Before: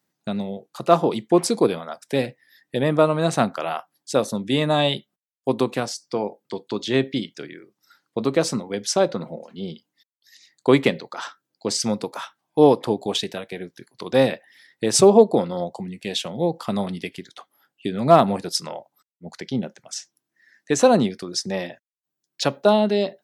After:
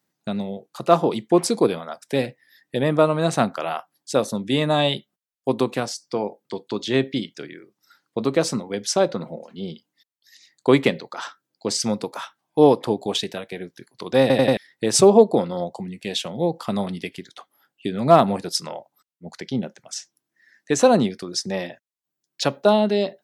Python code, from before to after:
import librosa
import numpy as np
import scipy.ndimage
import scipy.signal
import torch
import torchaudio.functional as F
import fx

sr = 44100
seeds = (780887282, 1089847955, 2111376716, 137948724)

y = fx.edit(x, sr, fx.stutter_over(start_s=14.21, slice_s=0.09, count=4), tone=tone)